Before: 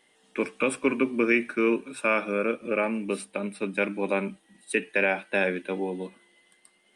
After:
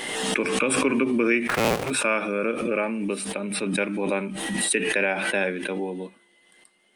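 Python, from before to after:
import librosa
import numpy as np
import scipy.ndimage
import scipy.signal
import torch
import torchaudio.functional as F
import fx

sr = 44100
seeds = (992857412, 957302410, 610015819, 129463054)

y = fx.cycle_switch(x, sr, every=2, mode='inverted', at=(1.47, 1.89), fade=0.02)
y = fx.pre_swell(y, sr, db_per_s=28.0)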